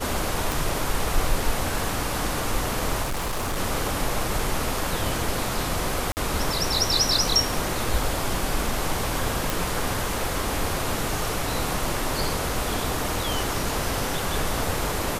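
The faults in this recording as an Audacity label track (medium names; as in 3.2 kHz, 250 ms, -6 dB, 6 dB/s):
0.520000	0.520000	pop
3.020000	3.580000	clipped -23.5 dBFS
6.120000	6.170000	dropout 49 ms
9.500000	9.500000	pop
12.490000	12.490000	dropout 2.3 ms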